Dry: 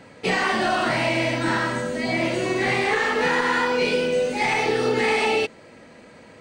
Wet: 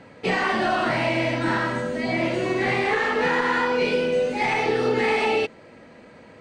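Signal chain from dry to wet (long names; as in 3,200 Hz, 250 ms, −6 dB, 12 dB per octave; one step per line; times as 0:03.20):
low-pass filter 3,200 Hz 6 dB per octave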